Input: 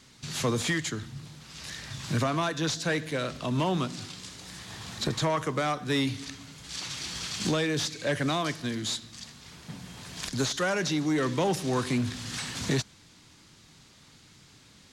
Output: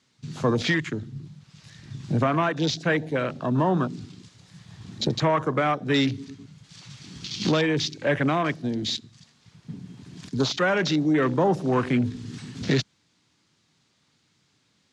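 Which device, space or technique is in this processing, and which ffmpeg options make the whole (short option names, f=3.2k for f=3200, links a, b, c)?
over-cleaned archive recording: -af "highpass=100,lowpass=7.9k,afwtdn=0.0178,volume=5.5dB"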